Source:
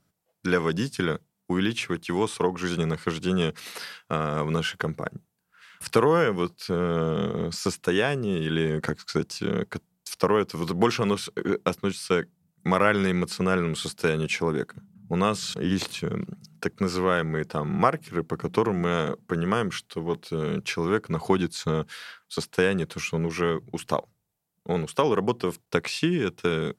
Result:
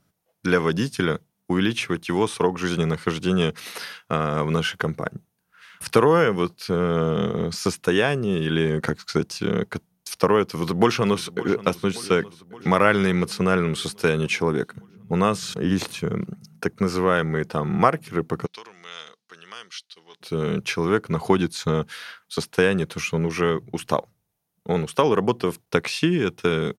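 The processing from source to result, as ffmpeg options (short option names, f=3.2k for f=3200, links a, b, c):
-filter_complex "[0:a]asplit=2[a][b];[b]afade=t=in:st=10.49:d=0.01,afade=t=out:st=11.59:d=0.01,aecho=0:1:570|1140|1710|2280|2850|3420|3990:0.133352|0.0866789|0.0563413|0.0366218|0.0238042|0.0154727|0.0100573[c];[a][c]amix=inputs=2:normalize=0,asettb=1/sr,asplit=3[d][e][f];[d]atrim=end=15.174[g];[e]atrim=start=15.17:end=17.15,asetpts=PTS-STARTPTS,afade=t=in:d=0.004:c=qsin,afade=t=out:st=1.976:d=0.004:c=qsin,equalizer=f=3.5k:w=1.2:g=-4[h];[f]atrim=start=17.146[i];[g][h]acrossfade=d=0.004:c1=hsin:c2=qsin[j];[j][i]acrossfade=d=0.004:c1=qsin:c2=hsin,asplit=3[k][l][m];[k]afade=t=out:st=18.45:d=0.02[n];[l]bandpass=f=4.5k:t=q:w=2,afade=t=in:st=18.45:d=0.02,afade=t=out:st=20.2:d=0.02[o];[m]afade=t=in:st=20.2:d=0.02[p];[n][o][p]amix=inputs=3:normalize=0,equalizer=f=4.6k:w=5.3:g=-2,bandreject=f=7.6k:w=8.9,volume=3.5dB"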